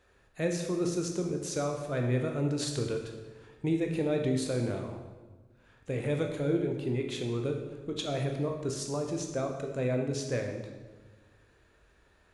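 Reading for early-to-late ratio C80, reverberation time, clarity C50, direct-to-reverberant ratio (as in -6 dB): 7.5 dB, 1.3 s, 5.5 dB, 2.5 dB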